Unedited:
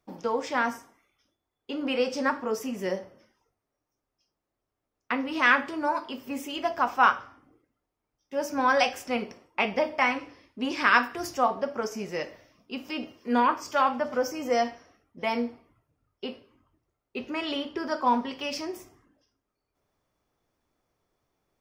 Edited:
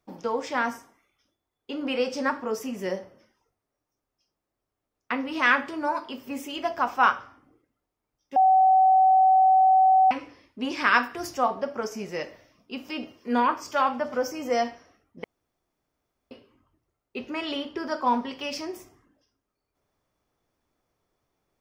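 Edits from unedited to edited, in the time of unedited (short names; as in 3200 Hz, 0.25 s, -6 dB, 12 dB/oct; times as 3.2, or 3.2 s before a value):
8.36–10.11 bleep 758 Hz -14.5 dBFS
15.24–16.31 room tone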